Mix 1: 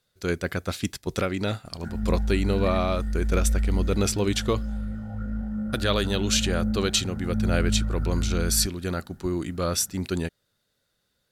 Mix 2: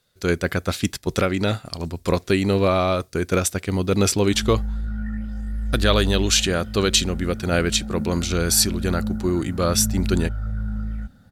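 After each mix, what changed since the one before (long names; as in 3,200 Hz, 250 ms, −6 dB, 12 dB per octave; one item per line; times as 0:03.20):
speech +5.5 dB
background: entry +2.40 s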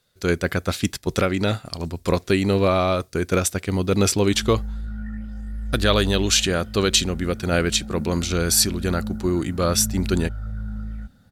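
background −3.5 dB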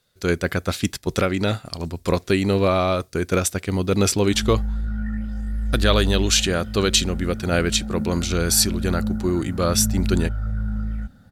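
background +5.0 dB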